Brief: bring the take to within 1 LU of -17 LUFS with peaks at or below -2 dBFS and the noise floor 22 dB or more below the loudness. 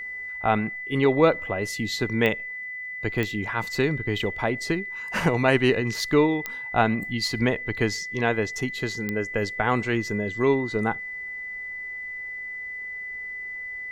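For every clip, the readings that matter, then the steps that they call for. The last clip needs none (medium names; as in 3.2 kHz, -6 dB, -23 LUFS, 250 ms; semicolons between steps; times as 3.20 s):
clicks found 4; steady tone 2 kHz; tone level -32 dBFS; loudness -25.5 LUFS; peak level -5.5 dBFS; loudness target -17.0 LUFS
-> de-click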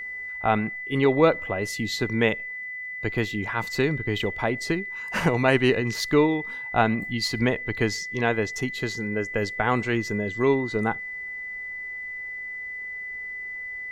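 clicks found 0; steady tone 2 kHz; tone level -32 dBFS
-> band-stop 2 kHz, Q 30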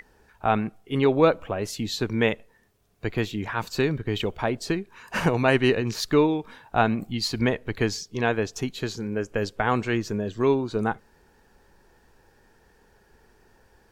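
steady tone not found; loudness -25.5 LUFS; peak level -5.5 dBFS; loudness target -17.0 LUFS
-> trim +8.5 dB; peak limiter -2 dBFS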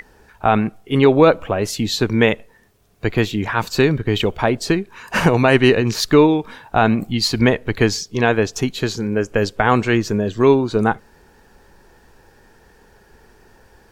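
loudness -17.5 LUFS; peak level -2.0 dBFS; noise floor -52 dBFS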